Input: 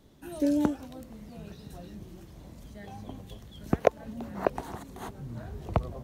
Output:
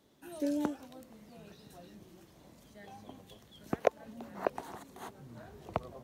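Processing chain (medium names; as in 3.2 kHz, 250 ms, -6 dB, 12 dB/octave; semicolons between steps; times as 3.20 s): high-pass 320 Hz 6 dB/octave; trim -4 dB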